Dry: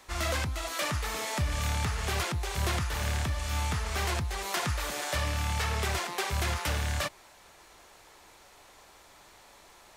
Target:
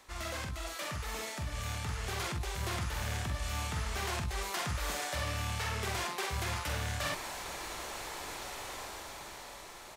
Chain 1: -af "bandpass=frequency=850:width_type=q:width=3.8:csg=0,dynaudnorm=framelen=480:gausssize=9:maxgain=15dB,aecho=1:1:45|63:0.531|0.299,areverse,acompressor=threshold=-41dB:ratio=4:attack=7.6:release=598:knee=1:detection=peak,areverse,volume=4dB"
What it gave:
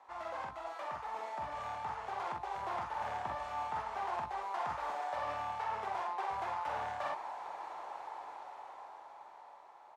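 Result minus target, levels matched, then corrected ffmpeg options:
1,000 Hz band +7.5 dB
-af "dynaudnorm=framelen=480:gausssize=9:maxgain=15dB,aecho=1:1:45|63:0.531|0.299,areverse,acompressor=threshold=-41dB:ratio=4:attack=7.6:release=598:knee=1:detection=peak,areverse,volume=4dB"

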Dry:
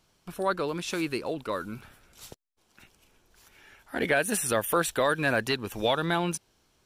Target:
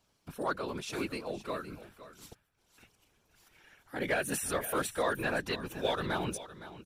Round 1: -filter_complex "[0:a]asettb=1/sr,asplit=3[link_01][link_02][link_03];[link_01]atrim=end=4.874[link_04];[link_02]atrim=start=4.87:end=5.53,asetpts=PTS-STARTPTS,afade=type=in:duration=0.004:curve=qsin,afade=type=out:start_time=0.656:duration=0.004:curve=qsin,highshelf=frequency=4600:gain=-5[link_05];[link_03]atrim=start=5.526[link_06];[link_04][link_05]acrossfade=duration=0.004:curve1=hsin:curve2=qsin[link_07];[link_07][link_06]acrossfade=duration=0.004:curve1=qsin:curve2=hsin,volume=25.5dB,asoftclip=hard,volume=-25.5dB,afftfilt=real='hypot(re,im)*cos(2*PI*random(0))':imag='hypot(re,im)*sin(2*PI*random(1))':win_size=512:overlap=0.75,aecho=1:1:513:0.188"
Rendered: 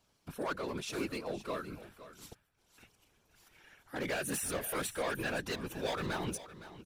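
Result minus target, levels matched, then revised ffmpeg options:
gain into a clipping stage and back: distortion +18 dB
-filter_complex "[0:a]asettb=1/sr,asplit=3[link_01][link_02][link_03];[link_01]atrim=end=4.874[link_04];[link_02]atrim=start=4.87:end=5.53,asetpts=PTS-STARTPTS,afade=type=in:duration=0.004:curve=qsin,afade=type=out:start_time=0.656:duration=0.004:curve=qsin,highshelf=frequency=4600:gain=-5[link_05];[link_03]atrim=start=5.526[link_06];[link_04][link_05]acrossfade=duration=0.004:curve1=hsin:curve2=qsin[link_07];[link_07][link_06]acrossfade=duration=0.004:curve1=qsin:curve2=hsin,volume=16dB,asoftclip=hard,volume=-16dB,afftfilt=real='hypot(re,im)*cos(2*PI*random(0))':imag='hypot(re,im)*sin(2*PI*random(1))':win_size=512:overlap=0.75,aecho=1:1:513:0.188"

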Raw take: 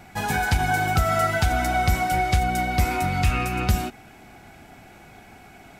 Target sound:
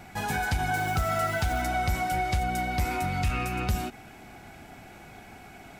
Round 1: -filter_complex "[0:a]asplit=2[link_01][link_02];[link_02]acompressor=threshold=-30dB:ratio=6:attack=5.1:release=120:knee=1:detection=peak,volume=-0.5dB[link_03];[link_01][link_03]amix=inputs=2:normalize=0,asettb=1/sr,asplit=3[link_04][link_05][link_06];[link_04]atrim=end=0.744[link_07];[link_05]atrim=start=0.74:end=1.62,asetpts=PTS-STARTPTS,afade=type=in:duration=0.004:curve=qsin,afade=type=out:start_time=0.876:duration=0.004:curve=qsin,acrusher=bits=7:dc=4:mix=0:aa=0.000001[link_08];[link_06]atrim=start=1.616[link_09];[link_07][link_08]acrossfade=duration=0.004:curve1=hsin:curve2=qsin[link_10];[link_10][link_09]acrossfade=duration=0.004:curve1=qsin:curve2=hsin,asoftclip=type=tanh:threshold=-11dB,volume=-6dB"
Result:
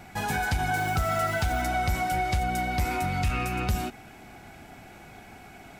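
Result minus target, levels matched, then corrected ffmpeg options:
downward compressor: peak gain reduction −5 dB
-filter_complex "[0:a]asplit=2[link_01][link_02];[link_02]acompressor=threshold=-36dB:ratio=6:attack=5.1:release=120:knee=1:detection=peak,volume=-0.5dB[link_03];[link_01][link_03]amix=inputs=2:normalize=0,asettb=1/sr,asplit=3[link_04][link_05][link_06];[link_04]atrim=end=0.744[link_07];[link_05]atrim=start=0.74:end=1.62,asetpts=PTS-STARTPTS,afade=type=in:duration=0.004:curve=qsin,afade=type=out:start_time=0.876:duration=0.004:curve=qsin,acrusher=bits=7:dc=4:mix=0:aa=0.000001[link_08];[link_06]atrim=start=1.616[link_09];[link_07][link_08]acrossfade=duration=0.004:curve1=hsin:curve2=qsin[link_10];[link_10][link_09]acrossfade=duration=0.004:curve1=qsin:curve2=hsin,asoftclip=type=tanh:threshold=-11dB,volume=-6dB"

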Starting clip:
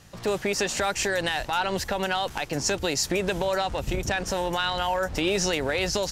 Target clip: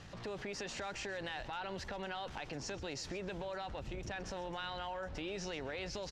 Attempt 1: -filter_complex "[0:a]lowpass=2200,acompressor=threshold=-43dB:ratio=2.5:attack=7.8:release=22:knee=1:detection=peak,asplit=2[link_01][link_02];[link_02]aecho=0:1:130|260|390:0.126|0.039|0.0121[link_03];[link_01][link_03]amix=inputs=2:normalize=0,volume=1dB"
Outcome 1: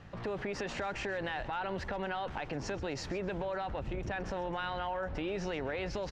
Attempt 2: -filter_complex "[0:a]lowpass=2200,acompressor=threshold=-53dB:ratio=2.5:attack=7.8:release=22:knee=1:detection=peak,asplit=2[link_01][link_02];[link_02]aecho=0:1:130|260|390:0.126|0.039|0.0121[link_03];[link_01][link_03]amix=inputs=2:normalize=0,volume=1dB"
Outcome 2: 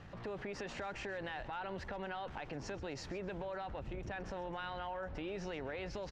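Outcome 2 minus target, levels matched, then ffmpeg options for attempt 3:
4,000 Hz band −5.5 dB
-filter_complex "[0:a]lowpass=4500,acompressor=threshold=-53dB:ratio=2.5:attack=7.8:release=22:knee=1:detection=peak,asplit=2[link_01][link_02];[link_02]aecho=0:1:130|260|390:0.126|0.039|0.0121[link_03];[link_01][link_03]amix=inputs=2:normalize=0,volume=1dB"

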